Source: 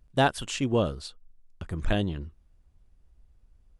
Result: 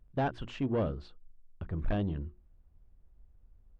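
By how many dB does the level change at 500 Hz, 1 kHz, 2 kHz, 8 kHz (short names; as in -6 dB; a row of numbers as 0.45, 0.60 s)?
-6.5 dB, -8.5 dB, -11.5 dB, under -25 dB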